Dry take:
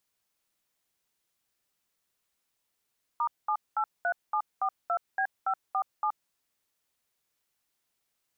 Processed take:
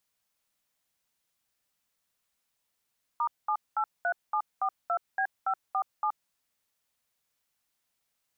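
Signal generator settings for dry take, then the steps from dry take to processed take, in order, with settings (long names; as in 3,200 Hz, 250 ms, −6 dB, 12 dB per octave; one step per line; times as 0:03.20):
touch tones "*783742B547", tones 74 ms, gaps 209 ms, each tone −27.5 dBFS
parametric band 370 Hz −9.5 dB 0.25 octaves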